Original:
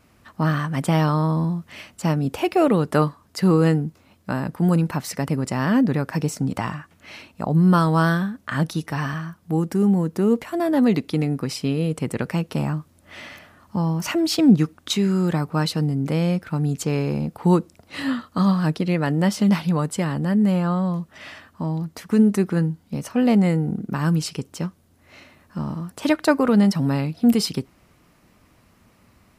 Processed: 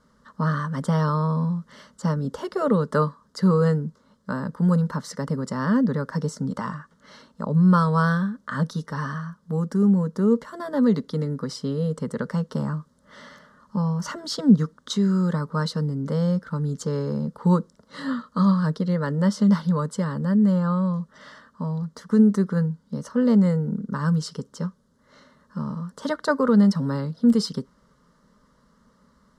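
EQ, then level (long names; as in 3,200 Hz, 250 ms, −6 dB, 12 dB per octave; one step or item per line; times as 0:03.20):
low-pass filter 6,000 Hz 12 dB per octave
phaser with its sweep stopped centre 490 Hz, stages 8
notch filter 2,600 Hz, Q 16
0.0 dB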